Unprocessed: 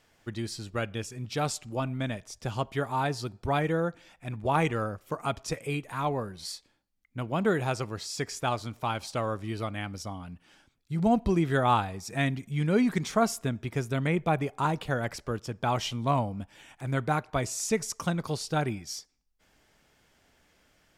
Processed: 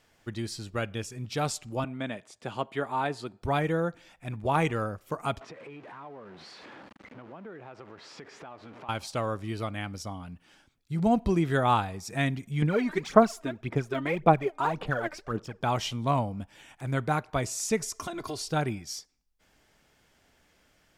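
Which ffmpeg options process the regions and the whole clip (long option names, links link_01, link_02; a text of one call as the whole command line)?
ffmpeg -i in.wav -filter_complex "[0:a]asettb=1/sr,asplit=3[link_01][link_02][link_03];[link_01]atrim=end=1.844[link_04];[link_02]atrim=start=1.84:end=3.42,asetpts=PTS-STARTPTS,afade=type=in:duration=0.004:curve=qsin,afade=type=out:start_time=1.576:duration=0.004:curve=qsin,highpass=200,lowpass=7800,equalizer=frequency=5600:width=2.4:gain=-11[link_05];[link_03]atrim=start=3.416[link_06];[link_04][link_05]acrossfade=duration=0.004:curve1=hsin:curve2=qsin[link_07];[link_07][link_06]acrossfade=duration=0.004:curve1=qsin:curve2=hsin,asettb=1/sr,asplit=3[link_08][link_09][link_10];[link_08]atrim=end=5.414[link_11];[link_09]atrim=start=5.41:end=8.89,asetpts=PTS-STARTPTS,afade=type=in:duration=0.004:curve=qsin,afade=type=out:start_time=3.476:duration=0.004:curve=qsin,aeval=exprs='val(0)+0.5*0.0211*sgn(val(0))':channel_layout=same,highpass=220,lowpass=2000,acompressor=threshold=-44dB:ratio=4:attack=3.2:release=140:knee=1:detection=peak[link_12];[link_10]atrim=start=8.886[link_13];[link_11][link_12]acrossfade=duration=0.004:curve1=hsin:curve2=qsin[link_14];[link_14][link_13]acrossfade=duration=0.004:curve1=qsin:curve2=hsin,asettb=1/sr,asplit=3[link_15][link_16][link_17];[link_15]atrim=end=12.624[link_18];[link_16]atrim=start=12.62:end=15.61,asetpts=PTS-STARTPTS,afade=type=in:duration=0.004:curve=qsin,afade=type=out:start_time=2.986:duration=0.004:curve=qsin,lowpass=frequency=2300:poles=1,equalizer=frequency=64:width=0.58:gain=-13,aphaser=in_gain=1:out_gain=1:delay=3.3:decay=0.69:speed=1.8:type=sinusoidal[link_19];[link_17]atrim=start=15.606[link_20];[link_18][link_19]acrossfade=duration=0.004:curve1=hsin:curve2=qsin[link_21];[link_21][link_20]acrossfade=duration=0.004:curve1=qsin:curve2=hsin,asettb=1/sr,asplit=3[link_22][link_23][link_24];[link_22]atrim=end=17.834[link_25];[link_23]atrim=start=17.83:end=18.51,asetpts=PTS-STARTPTS,afade=type=in:duration=0.004:curve=qsin,afade=type=out:start_time=0.676:duration=0.004:curve=qsin,aecho=1:1:2.9:0.97,atrim=end_sample=29988,acompressor=threshold=-31dB:ratio=5:attack=3.2:release=140:knee=1:detection=peak[link_26];[link_24]atrim=start=18.506[link_27];[link_25][link_26]acrossfade=duration=0.004:curve1=hsin:curve2=qsin[link_28];[link_28][link_27]acrossfade=duration=0.004:curve1=qsin:curve2=hsin" out.wav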